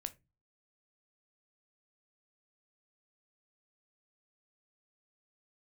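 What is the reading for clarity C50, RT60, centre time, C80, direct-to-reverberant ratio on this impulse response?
20.0 dB, no single decay rate, 4 ms, 28.0 dB, 10.0 dB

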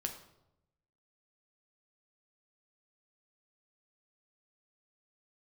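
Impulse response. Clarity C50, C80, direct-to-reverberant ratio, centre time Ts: 9.0 dB, 12.0 dB, 3.5 dB, 16 ms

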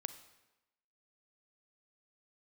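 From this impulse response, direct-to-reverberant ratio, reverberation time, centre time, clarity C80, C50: 11.5 dB, 1.0 s, 7 ms, 14.5 dB, 12.5 dB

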